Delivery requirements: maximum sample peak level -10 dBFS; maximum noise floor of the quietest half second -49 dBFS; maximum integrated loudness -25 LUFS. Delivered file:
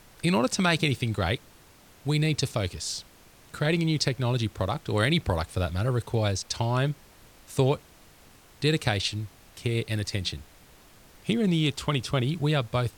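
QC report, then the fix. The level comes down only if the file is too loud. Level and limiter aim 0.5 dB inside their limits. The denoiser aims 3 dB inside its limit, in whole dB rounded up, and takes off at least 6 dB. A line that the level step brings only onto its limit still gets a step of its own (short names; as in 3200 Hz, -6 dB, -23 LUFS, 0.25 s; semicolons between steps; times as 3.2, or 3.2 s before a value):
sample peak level -9.5 dBFS: fail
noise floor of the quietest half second -54 dBFS: OK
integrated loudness -27.5 LUFS: OK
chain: limiter -10.5 dBFS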